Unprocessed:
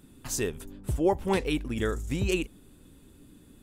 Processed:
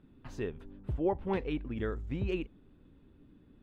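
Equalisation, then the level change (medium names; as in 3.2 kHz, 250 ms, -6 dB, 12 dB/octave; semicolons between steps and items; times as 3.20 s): dynamic bell 6.4 kHz, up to +6 dB, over -59 dBFS, Q 7.7; distance through air 390 m; -5.0 dB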